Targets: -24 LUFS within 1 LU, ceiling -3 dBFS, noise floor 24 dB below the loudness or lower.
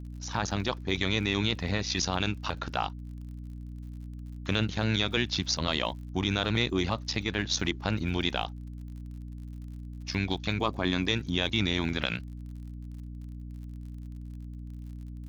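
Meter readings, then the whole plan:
tick rate 46 per s; hum 60 Hz; highest harmonic 300 Hz; hum level -38 dBFS; loudness -29.5 LUFS; peak level -10.0 dBFS; loudness target -24.0 LUFS
-> de-click; de-hum 60 Hz, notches 5; trim +5.5 dB

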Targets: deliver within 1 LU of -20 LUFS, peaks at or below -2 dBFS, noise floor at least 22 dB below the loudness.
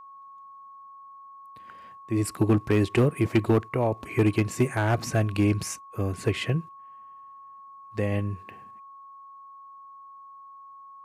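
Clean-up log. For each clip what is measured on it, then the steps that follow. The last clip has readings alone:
clipped samples 0.3%; clipping level -13.5 dBFS; steady tone 1.1 kHz; tone level -44 dBFS; loudness -26.0 LUFS; peak level -13.5 dBFS; loudness target -20.0 LUFS
-> clip repair -13.5 dBFS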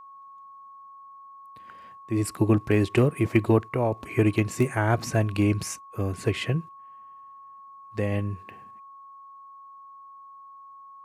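clipped samples 0.0%; steady tone 1.1 kHz; tone level -44 dBFS
-> band-stop 1.1 kHz, Q 30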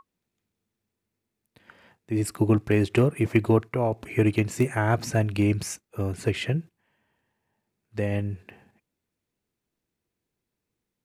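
steady tone not found; loudness -25.5 LUFS; peak level -5.0 dBFS; loudness target -20.0 LUFS
-> trim +5.5 dB; peak limiter -2 dBFS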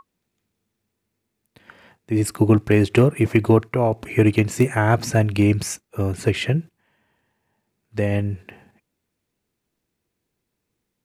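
loudness -20.0 LUFS; peak level -2.0 dBFS; noise floor -79 dBFS

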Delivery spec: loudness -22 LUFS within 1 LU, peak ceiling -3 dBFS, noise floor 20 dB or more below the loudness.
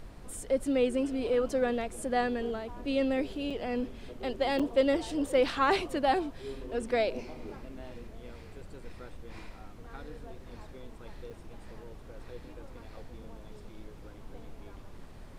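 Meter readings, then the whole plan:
dropouts 3; longest dropout 5.6 ms; noise floor -48 dBFS; noise floor target -51 dBFS; loudness -30.5 LUFS; peak level -14.5 dBFS; loudness target -22.0 LUFS
-> interpolate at 3.50/4.59/11.30 s, 5.6 ms; noise print and reduce 6 dB; trim +8.5 dB

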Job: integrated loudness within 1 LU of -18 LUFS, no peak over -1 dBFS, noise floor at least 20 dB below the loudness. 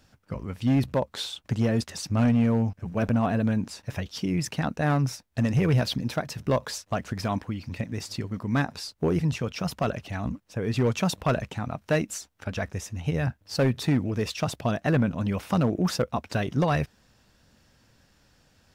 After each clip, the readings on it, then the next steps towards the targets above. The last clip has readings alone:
clipped samples 1.1%; clipping level -16.5 dBFS; loudness -27.5 LUFS; peak level -16.5 dBFS; loudness target -18.0 LUFS
-> clip repair -16.5 dBFS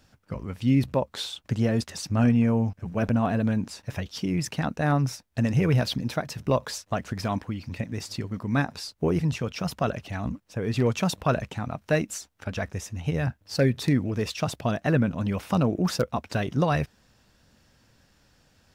clipped samples 0.0%; loudness -27.0 LUFS; peak level -10.5 dBFS; loudness target -18.0 LUFS
-> trim +9 dB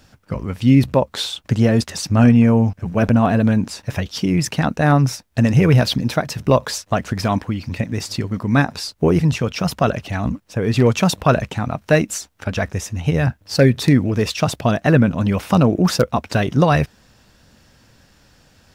loudness -18.0 LUFS; peak level -1.5 dBFS; noise floor -55 dBFS

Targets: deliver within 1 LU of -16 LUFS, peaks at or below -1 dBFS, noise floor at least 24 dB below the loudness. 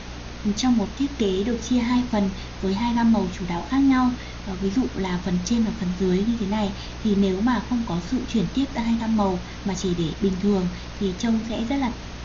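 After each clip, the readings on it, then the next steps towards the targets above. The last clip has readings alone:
hum 60 Hz; highest harmonic 300 Hz; hum level -36 dBFS; noise floor -36 dBFS; noise floor target -48 dBFS; loudness -24.0 LUFS; peak level -11.0 dBFS; loudness target -16.0 LUFS
-> de-hum 60 Hz, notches 5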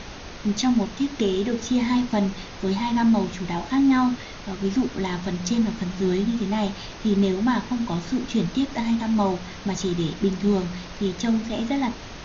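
hum not found; noise floor -39 dBFS; noise floor target -48 dBFS
-> noise print and reduce 9 dB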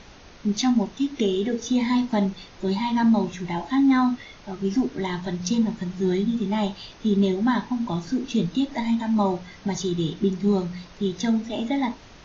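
noise floor -47 dBFS; noise floor target -49 dBFS
-> noise print and reduce 6 dB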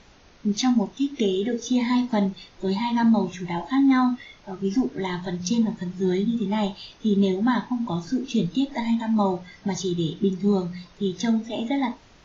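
noise floor -53 dBFS; loudness -24.5 LUFS; peak level -11.5 dBFS; loudness target -16.0 LUFS
-> trim +8.5 dB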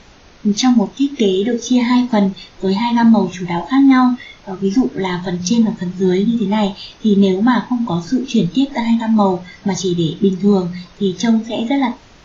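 loudness -16.0 LUFS; peak level -3.0 dBFS; noise floor -44 dBFS

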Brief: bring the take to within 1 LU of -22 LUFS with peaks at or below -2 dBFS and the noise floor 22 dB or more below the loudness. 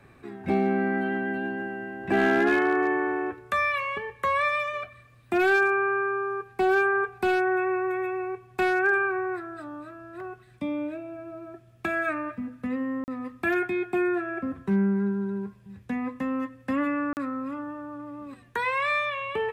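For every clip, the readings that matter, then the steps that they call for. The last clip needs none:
clipped samples 0.3%; clipping level -16.0 dBFS; dropouts 2; longest dropout 39 ms; loudness -26.5 LUFS; peak level -16.0 dBFS; loudness target -22.0 LUFS
-> clip repair -16 dBFS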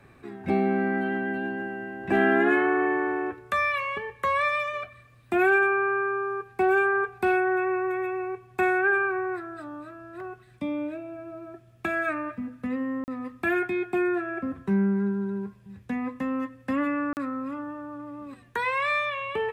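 clipped samples 0.0%; dropouts 2; longest dropout 39 ms
-> interpolate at 13.04/17.13 s, 39 ms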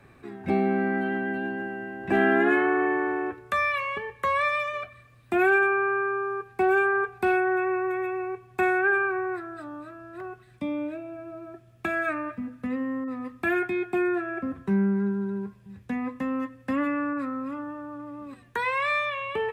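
dropouts 0; loudness -26.5 LUFS; peak level -10.0 dBFS; loudness target -22.0 LUFS
-> trim +4.5 dB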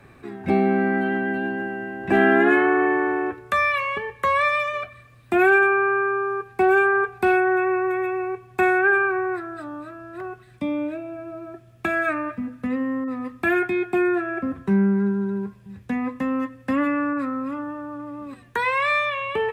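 loudness -22.0 LUFS; peak level -5.5 dBFS; noise floor -50 dBFS

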